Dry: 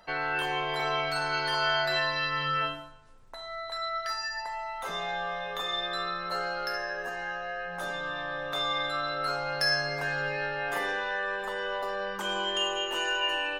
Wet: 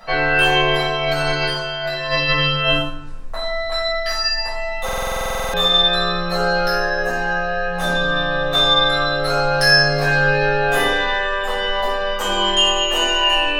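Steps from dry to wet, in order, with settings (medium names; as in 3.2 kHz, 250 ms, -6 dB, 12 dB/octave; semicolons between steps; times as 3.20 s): dynamic bell 1.3 kHz, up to -6 dB, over -43 dBFS, Q 1.2; 0.72–2.82 s: compressor with a negative ratio -35 dBFS, ratio -0.5; simulated room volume 470 m³, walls furnished, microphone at 6.1 m; buffer glitch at 4.84 s, samples 2048, times 14; trim +7 dB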